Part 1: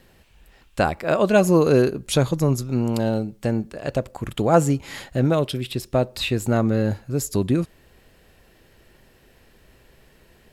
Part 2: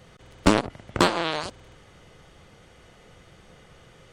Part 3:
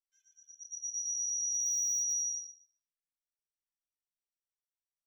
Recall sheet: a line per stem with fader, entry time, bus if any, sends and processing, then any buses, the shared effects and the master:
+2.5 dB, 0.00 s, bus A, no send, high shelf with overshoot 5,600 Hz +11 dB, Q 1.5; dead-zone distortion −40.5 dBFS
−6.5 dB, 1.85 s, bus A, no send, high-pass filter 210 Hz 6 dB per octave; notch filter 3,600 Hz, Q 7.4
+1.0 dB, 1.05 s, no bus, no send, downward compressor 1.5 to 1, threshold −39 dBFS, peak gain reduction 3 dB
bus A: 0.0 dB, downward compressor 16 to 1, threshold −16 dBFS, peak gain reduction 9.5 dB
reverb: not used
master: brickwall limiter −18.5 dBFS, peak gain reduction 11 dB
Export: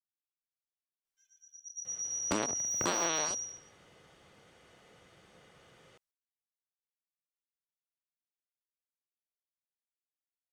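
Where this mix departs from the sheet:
stem 1: muted
stem 2: missing notch filter 3,600 Hz, Q 7.4

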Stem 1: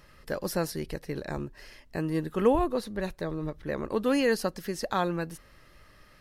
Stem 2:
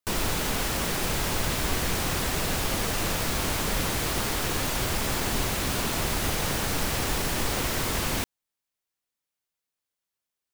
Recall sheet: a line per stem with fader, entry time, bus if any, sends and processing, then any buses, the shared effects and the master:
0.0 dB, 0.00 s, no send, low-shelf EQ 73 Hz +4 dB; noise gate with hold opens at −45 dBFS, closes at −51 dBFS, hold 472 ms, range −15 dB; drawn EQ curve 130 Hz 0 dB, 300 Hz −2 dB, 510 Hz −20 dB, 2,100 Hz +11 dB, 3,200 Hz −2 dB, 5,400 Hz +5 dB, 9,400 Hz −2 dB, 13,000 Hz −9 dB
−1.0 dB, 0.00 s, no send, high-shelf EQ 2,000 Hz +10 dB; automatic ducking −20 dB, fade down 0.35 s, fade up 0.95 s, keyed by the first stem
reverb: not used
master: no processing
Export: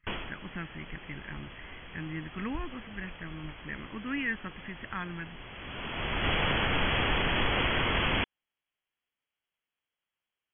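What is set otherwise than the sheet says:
stem 1 0.0 dB → −6.5 dB
master: extra linear-phase brick-wall low-pass 3,400 Hz

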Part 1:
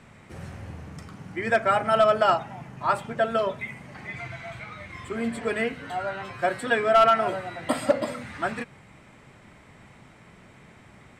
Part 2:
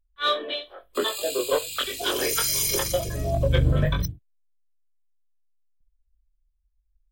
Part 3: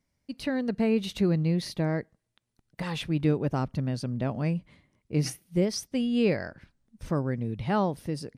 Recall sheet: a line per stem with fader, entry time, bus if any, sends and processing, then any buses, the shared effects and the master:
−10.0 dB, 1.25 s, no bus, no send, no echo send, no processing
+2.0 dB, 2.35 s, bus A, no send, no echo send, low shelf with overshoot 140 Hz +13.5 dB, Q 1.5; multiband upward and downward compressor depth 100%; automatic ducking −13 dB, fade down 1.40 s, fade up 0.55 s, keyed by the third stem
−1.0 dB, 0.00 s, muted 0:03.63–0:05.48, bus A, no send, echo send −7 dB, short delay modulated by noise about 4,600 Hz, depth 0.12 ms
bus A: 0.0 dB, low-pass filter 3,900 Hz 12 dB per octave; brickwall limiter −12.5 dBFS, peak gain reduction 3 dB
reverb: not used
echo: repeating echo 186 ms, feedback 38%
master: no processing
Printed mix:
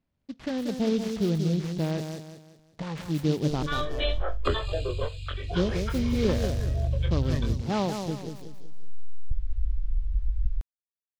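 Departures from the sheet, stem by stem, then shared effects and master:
stem 1: muted
stem 2: entry 2.35 s → 3.50 s
master: extra high-shelf EQ 5,000 Hz −7.5 dB

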